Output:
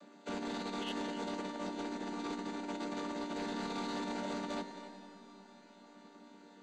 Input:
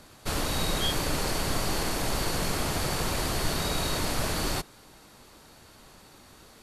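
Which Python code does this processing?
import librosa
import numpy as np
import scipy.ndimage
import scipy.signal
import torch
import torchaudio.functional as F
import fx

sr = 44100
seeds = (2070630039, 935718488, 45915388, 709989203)

y = fx.chord_vocoder(x, sr, chord='minor triad', root=55)
y = fx.peak_eq(y, sr, hz=320.0, db=9.0, octaves=0.2, at=(1.36, 3.4))
y = fx.over_compress(y, sr, threshold_db=-32.0, ratio=-0.5)
y = scipy.signal.sosfilt(scipy.signal.butter(2, 200.0, 'highpass', fs=sr, output='sos'), y)
y = fx.notch(y, sr, hz=5400.0, q=7.0)
y = fx.echo_heads(y, sr, ms=89, heads='all three', feedback_pct=46, wet_db=-17.0)
y = 10.0 ** (-28.5 / 20.0) * np.tanh(y / 10.0 ** (-28.5 / 20.0))
y = fx.rev_freeverb(y, sr, rt60_s=4.9, hf_ratio=0.95, predelay_ms=85, drr_db=12.0)
y = F.gain(torch.from_numpy(y), -4.0).numpy()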